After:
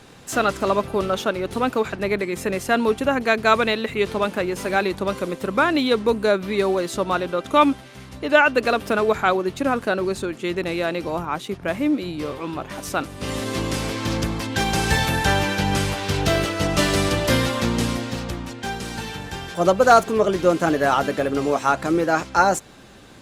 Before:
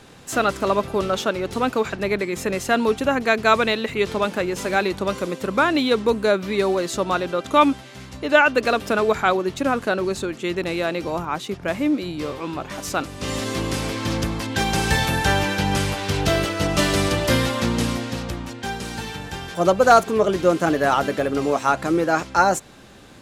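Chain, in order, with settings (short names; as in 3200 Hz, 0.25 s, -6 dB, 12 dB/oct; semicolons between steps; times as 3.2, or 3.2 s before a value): Opus 48 kbps 48000 Hz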